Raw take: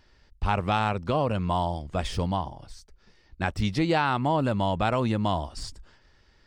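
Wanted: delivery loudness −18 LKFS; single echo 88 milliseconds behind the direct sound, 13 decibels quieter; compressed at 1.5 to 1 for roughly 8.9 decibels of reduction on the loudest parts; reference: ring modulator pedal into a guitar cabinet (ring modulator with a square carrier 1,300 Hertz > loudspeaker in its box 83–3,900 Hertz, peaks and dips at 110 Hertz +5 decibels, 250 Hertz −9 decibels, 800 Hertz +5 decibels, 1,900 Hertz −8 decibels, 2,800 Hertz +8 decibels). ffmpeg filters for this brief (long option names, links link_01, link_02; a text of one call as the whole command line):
ffmpeg -i in.wav -af "acompressor=threshold=-46dB:ratio=1.5,aecho=1:1:88:0.224,aeval=exprs='val(0)*sgn(sin(2*PI*1300*n/s))':channel_layout=same,highpass=83,equalizer=frequency=110:width_type=q:width=4:gain=5,equalizer=frequency=250:width_type=q:width=4:gain=-9,equalizer=frequency=800:width_type=q:width=4:gain=5,equalizer=frequency=1900:width_type=q:width=4:gain=-8,equalizer=frequency=2800:width_type=q:width=4:gain=8,lowpass=frequency=3900:width=0.5412,lowpass=frequency=3900:width=1.3066,volume=16.5dB" out.wav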